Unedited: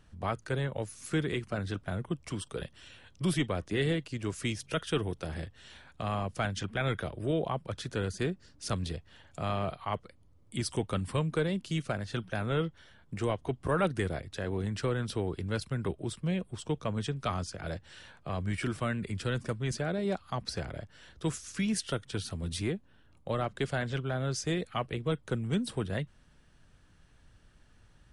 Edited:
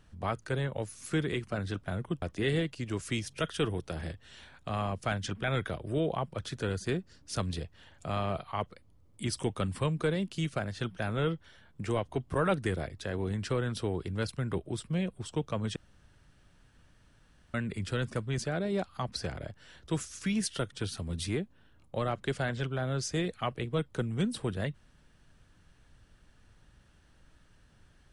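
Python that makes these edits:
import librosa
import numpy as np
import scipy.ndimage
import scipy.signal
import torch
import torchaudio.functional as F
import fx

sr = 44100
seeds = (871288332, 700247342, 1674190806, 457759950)

y = fx.edit(x, sr, fx.cut(start_s=2.22, length_s=1.33),
    fx.room_tone_fill(start_s=17.09, length_s=1.78), tone=tone)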